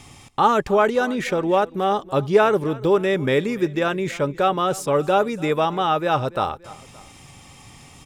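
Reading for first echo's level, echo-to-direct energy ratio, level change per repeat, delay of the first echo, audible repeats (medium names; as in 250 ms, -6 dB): -20.0 dB, -19.0 dB, -5.0 dB, 287 ms, 2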